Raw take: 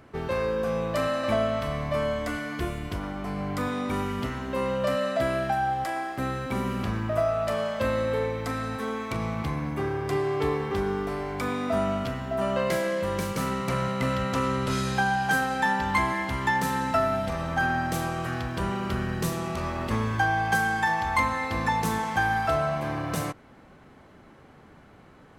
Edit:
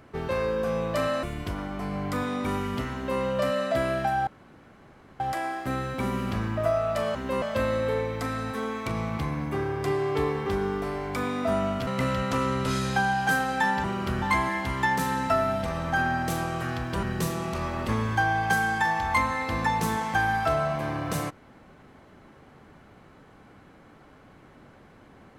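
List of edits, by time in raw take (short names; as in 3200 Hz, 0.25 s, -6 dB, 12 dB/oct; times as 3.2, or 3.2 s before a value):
1.23–2.68 cut
4.39–4.66 copy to 7.67
5.72 insert room tone 0.93 s
12.12–13.89 cut
18.67–19.05 move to 15.86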